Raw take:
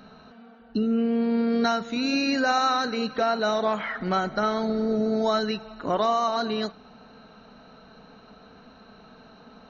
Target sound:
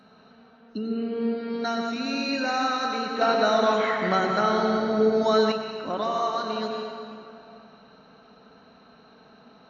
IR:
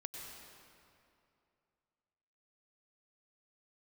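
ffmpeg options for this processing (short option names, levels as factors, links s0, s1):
-filter_complex "[1:a]atrim=start_sample=2205[s0];[0:a][s0]afir=irnorm=-1:irlink=0,asettb=1/sr,asplit=3[s1][s2][s3];[s1]atrim=end=3.214[s4];[s2]atrim=start=3.21:end=5.52,asetpts=PTS-STARTPTS,afade=t=in:d=0.004:c=qsin,afade=t=out:st=2.306:d=0.004:c=qsin,acontrast=49[s5];[s3]atrim=start=5.516[s6];[s4][s5]acrossfade=d=0.004:c1=hsin:c2=qsin[s7];[s7][s6]acrossfade=d=0.004:c1=qsin:c2=hsin,highpass=f=150:p=1" -ar 32000 -c:a wmav2 -b:a 128k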